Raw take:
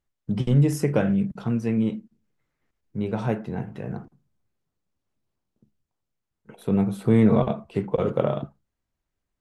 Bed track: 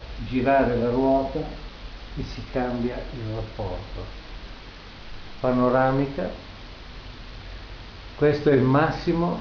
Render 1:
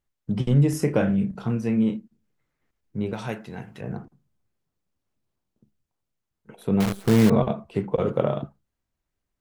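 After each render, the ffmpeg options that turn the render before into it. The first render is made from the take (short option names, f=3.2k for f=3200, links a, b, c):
-filter_complex "[0:a]asettb=1/sr,asplit=3[a][b][c];[a]atrim=end=0.704[d];[b]atrim=start=0.7:end=1.97,asetpts=PTS-STARTPTS,afade=t=in:d=0.004:c=qsin,afade=t=out:st=1.266:d=0.004:c=qsin,asplit=2[e][f];[f]adelay=32,volume=-8.5dB[g];[e][g]amix=inputs=2:normalize=0,atrim=end_sample=56007[h];[c]atrim=start=1.966[i];[d][h]acrossfade=d=0.004:c1=hsin:c2=qsin[j];[j][i]acrossfade=d=0.004:c1=qsin:c2=hsin,asettb=1/sr,asplit=3[k][l][m];[k]atrim=end=3.134[n];[l]atrim=start=3.13:end=3.81,asetpts=PTS-STARTPTS,afade=t=in:d=0.004:c=qsin,afade=t=out:st=0.676:d=0.004:c=qsin,tiltshelf=f=1.5k:g=-7.5[o];[m]atrim=start=3.806[p];[n][o]acrossfade=d=0.004:c1=hsin:c2=qsin[q];[q][p]acrossfade=d=0.004:c1=qsin:c2=hsin,asettb=1/sr,asplit=3[r][s][t];[r]atrim=end=6.804[u];[s]atrim=start=6.8:end=7.3,asetpts=PTS-STARTPTS,afade=t=in:d=0.004:c=qsin,afade=t=out:st=0.496:d=0.004:c=qsin,acrusher=bits=5:dc=4:mix=0:aa=0.000001[v];[t]atrim=start=7.296[w];[u][v]acrossfade=d=0.004:c1=hsin:c2=qsin[x];[x][w]acrossfade=d=0.004:c1=qsin:c2=hsin"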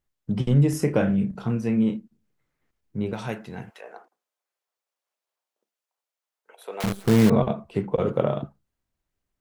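-filter_complex "[0:a]asettb=1/sr,asplit=3[a][b][c];[a]atrim=end=3.704[d];[b]atrim=start=3.7:end=6.84,asetpts=PTS-STARTPTS,afade=t=in:d=0.004:c=qsin,afade=t=out:st=3.136:d=0.004:c=qsin,highpass=f=530:w=0.5412,highpass=f=530:w=1.3066[e];[c]atrim=start=6.836[f];[d][e]acrossfade=d=0.004:c1=hsin:c2=qsin[g];[g][f]acrossfade=d=0.004:c1=qsin:c2=hsin"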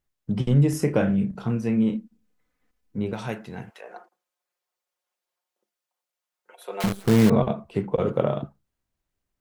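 -filter_complex "[0:a]asettb=1/sr,asplit=3[a][b][c];[a]atrim=end=1.934[d];[b]atrim=start=1.93:end=2.98,asetpts=PTS-STARTPTS,afade=t=in:d=0.004:c=qsin,afade=t=out:st=1.046:d=0.004:c=qsin,aecho=1:1:4:0.67,atrim=end_sample=46305[e];[c]atrim=start=2.976[f];[d][e]acrossfade=d=0.004:c1=hsin:c2=qsin[g];[g][f]acrossfade=d=0.004:c1=qsin:c2=hsin,asettb=1/sr,asplit=3[h][i][j];[h]atrim=end=3.894[k];[i]atrim=start=3.89:end=6.88,asetpts=PTS-STARTPTS,afade=t=in:d=0.004:c=qsin,afade=t=out:st=2.986:d=0.004:c=qsin,aecho=1:1:5.6:0.65,atrim=end_sample=131859[l];[j]atrim=start=6.876[m];[k][l]acrossfade=d=0.004:c1=hsin:c2=qsin[n];[n][m]acrossfade=d=0.004:c1=qsin:c2=hsin"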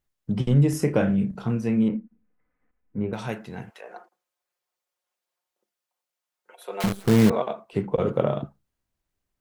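-filter_complex "[0:a]asettb=1/sr,asplit=3[a][b][c];[a]atrim=end=1.884[d];[b]atrim=start=1.88:end=3.13,asetpts=PTS-STARTPTS,afade=t=in:d=0.004:c=qsin,afade=t=out:st=1.246:d=0.004:c=qsin,lowpass=f=2.2k:w=0.5412,lowpass=f=2.2k:w=1.3066[e];[c]atrim=start=3.126[f];[d][e]acrossfade=d=0.004:c1=hsin:c2=qsin[g];[g][f]acrossfade=d=0.004:c1=qsin:c2=hsin,asettb=1/sr,asplit=3[h][i][j];[h]atrim=end=7.314[k];[i]atrim=start=7.31:end=7.73,asetpts=PTS-STARTPTS,afade=t=in:d=0.004:c=qsin,afade=t=out:st=0.416:d=0.004:c=qsin,highpass=470[l];[j]atrim=start=7.726[m];[k][l]acrossfade=d=0.004:c1=hsin:c2=qsin[n];[n][m]acrossfade=d=0.004:c1=qsin:c2=hsin"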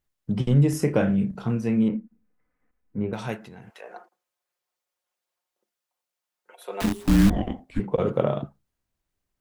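-filter_complex "[0:a]asettb=1/sr,asplit=3[a][b][c];[a]atrim=end=3.364[d];[b]atrim=start=3.36:end=3.77,asetpts=PTS-STARTPTS,afade=t=in:d=0.004:c=qsin,afade=t=out:st=0.406:d=0.004:c=qsin,acompressor=threshold=-40dB:ratio=6:attack=3.2:release=140:knee=1:detection=peak[e];[c]atrim=start=3.766[f];[d][e]acrossfade=d=0.004:c1=hsin:c2=qsin[g];[g][f]acrossfade=d=0.004:c1=qsin:c2=hsin,asettb=1/sr,asplit=3[h][i][j];[h]atrim=end=6.814[k];[i]atrim=start=6.81:end=7.8,asetpts=PTS-STARTPTS,afade=t=in:d=0.004:c=qsin,afade=t=out:st=0.986:d=0.004:c=qsin,afreqshift=-410[l];[j]atrim=start=7.796[m];[k][l]acrossfade=d=0.004:c1=hsin:c2=qsin[n];[n][m]acrossfade=d=0.004:c1=qsin:c2=hsin"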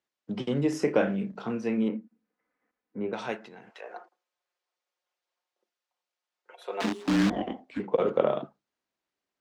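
-filter_complex "[0:a]highpass=44,acrossover=split=230 6700:gain=0.0708 1 0.1[a][b][c];[a][b][c]amix=inputs=3:normalize=0"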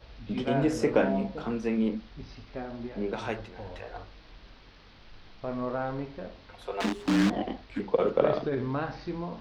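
-filter_complex "[1:a]volume=-12dB[a];[0:a][a]amix=inputs=2:normalize=0"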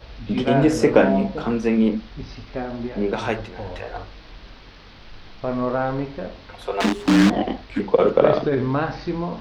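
-af "volume=9dB,alimiter=limit=-2dB:level=0:latency=1"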